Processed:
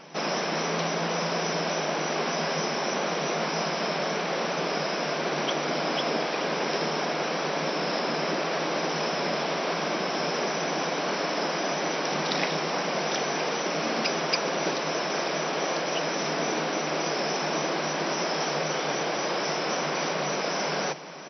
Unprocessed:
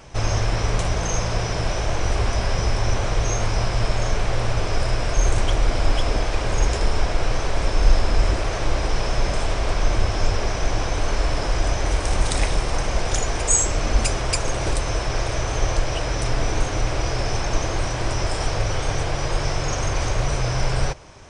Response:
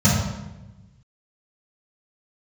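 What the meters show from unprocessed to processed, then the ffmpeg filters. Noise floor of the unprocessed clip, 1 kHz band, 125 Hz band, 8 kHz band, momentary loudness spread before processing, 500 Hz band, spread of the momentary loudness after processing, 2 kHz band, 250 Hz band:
−26 dBFS, 0.0 dB, −15.5 dB, −7.5 dB, 3 LU, 0.0 dB, 1 LU, 0.0 dB, −0.5 dB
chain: -af "afftfilt=real='re*between(b*sr/4096,140,6000)':imag='im*between(b*sr/4096,140,6000)':win_size=4096:overlap=0.75,areverse,acompressor=mode=upward:threshold=-36dB:ratio=2.5,areverse,aecho=1:1:932:0.126"

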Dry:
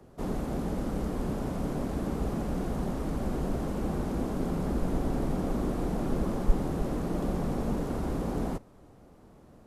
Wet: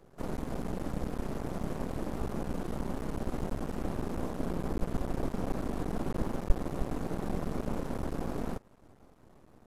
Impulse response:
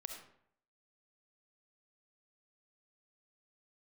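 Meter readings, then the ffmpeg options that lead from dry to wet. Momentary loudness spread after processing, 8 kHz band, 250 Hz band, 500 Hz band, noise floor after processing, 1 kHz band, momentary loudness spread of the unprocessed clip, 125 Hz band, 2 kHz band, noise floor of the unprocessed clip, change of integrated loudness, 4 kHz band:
2 LU, −3.0 dB, −5.0 dB, −4.0 dB, −59 dBFS, −3.0 dB, 2 LU, −4.5 dB, −1.5 dB, −55 dBFS, −4.5 dB, −2.5 dB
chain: -af "aeval=exprs='max(val(0),0)':channel_layout=same"

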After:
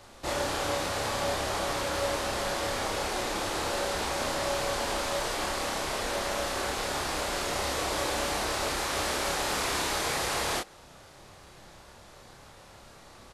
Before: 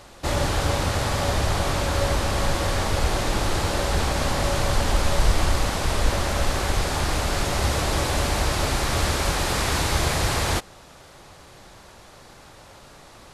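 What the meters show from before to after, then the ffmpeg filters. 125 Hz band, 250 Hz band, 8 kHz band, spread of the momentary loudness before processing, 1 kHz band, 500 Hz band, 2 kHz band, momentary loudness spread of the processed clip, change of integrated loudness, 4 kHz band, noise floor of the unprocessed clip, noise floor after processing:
−17.0 dB, −8.0 dB, −4.5 dB, 2 LU, −4.5 dB, −4.0 dB, −4.5 dB, 2 LU, −6.0 dB, −4.5 dB, −47 dBFS, −52 dBFS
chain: -filter_complex "[0:a]acrossover=split=240|4400[link_01][link_02][link_03];[link_01]acompressor=threshold=-38dB:ratio=5[link_04];[link_04][link_02][link_03]amix=inputs=3:normalize=0,asplit=2[link_05][link_06];[link_06]adelay=30,volume=-2dB[link_07];[link_05][link_07]amix=inputs=2:normalize=0,volume=-6.5dB"

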